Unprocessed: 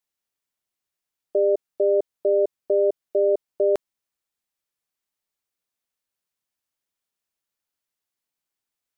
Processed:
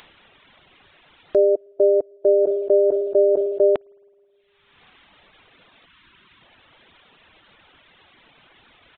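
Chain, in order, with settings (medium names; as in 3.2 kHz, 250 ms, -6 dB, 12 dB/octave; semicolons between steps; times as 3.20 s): 5.86–6.42 s: time-frequency box 400–920 Hz -10 dB; resampled via 8 kHz; upward compressor, threshold -27 dBFS; on a send at -21 dB: reverberation RT60 2.5 s, pre-delay 52 ms; on the sum: reverb removal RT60 1.4 s; 2.42–3.71 s: decay stretcher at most 46 dB/s; trim +5 dB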